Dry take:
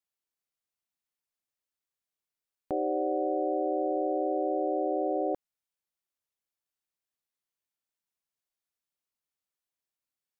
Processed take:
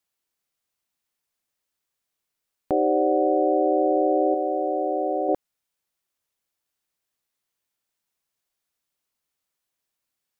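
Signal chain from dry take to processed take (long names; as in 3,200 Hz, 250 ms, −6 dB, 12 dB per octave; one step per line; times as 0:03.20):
0:04.34–0:05.29: tilt shelving filter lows −6.5 dB, about 1,200 Hz
level +8.5 dB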